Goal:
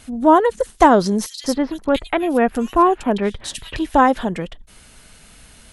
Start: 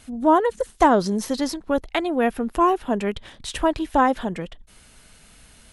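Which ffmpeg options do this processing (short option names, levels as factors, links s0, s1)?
-filter_complex "[0:a]asettb=1/sr,asplit=3[s0][s1][s2];[s0]atrim=end=1.264[s3];[s1]atrim=start=1.26:end=3.76,asetpts=PTS-STARTPTS,afade=t=in:d=0.004:c=qsin,afade=t=out:st=2.496:d=0.004:c=qsin,acrossover=split=2800[s4][s5];[s4]adelay=180[s6];[s6][s5]amix=inputs=2:normalize=0,atrim=end_sample=110250[s7];[s2]atrim=start=3.756[s8];[s3][s7]acrossfade=d=0.004:c1=hsin:c2=qsin[s9];[s9][s8]acrossfade=d=0.004:c1=qsin:c2=hsin,volume=1.68"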